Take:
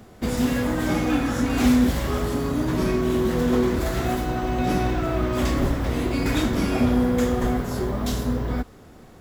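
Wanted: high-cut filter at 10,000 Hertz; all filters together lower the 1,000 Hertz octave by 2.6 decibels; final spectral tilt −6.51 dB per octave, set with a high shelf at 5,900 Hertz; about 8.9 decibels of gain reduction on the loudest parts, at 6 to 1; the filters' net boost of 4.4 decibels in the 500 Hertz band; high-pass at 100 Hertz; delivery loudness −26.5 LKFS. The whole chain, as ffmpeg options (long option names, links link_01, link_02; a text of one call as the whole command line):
ffmpeg -i in.wav -af "highpass=100,lowpass=10000,equalizer=frequency=500:width_type=o:gain=7.5,equalizer=frequency=1000:width_type=o:gain=-7.5,highshelf=frequency=5900:gain=-8.5,acompressor=threshold=-23dB:ratio=6,volume=1dB" out.wav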